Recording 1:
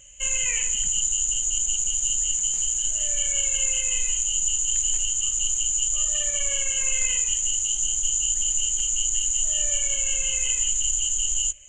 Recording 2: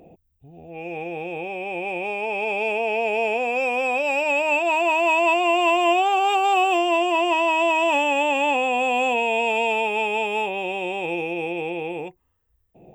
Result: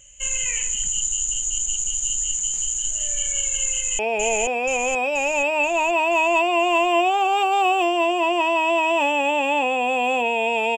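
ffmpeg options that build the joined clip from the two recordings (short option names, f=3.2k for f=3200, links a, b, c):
-filter_complex "[0:a]apad=whole_dur=10.77,atrim=end=10.77,atrim=end=3.992[a];[1:a]atrim=start=2.908:end=9.69[b];[a][b]acrossfade=d=0.004:c1=hsin:c2=hsin,asplit=2[c][d];[d]afade=t=in:st=3.71:d=0.01,afade=t=out:st=3.99:d=0.01,aecho=0:1:480|960|1440|1920|2400|2880|3360|3840|4320:0.749894|0.449937|0.269962|0.161977|0.0971863|0.0583118|0.0349871|0.0209922|0.0125953[e];[c][e]amix=inputs=2:normalize=0"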